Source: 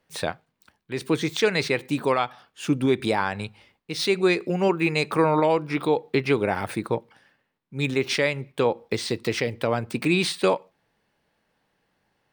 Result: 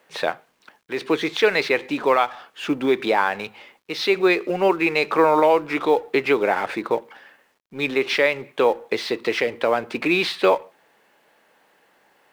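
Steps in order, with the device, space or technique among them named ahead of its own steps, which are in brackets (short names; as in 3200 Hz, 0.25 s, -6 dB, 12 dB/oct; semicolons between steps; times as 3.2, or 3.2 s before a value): phone line with mismatched companding (BPF 370–3300 Hz; G.711 law mismatch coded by mu); gain +5 dB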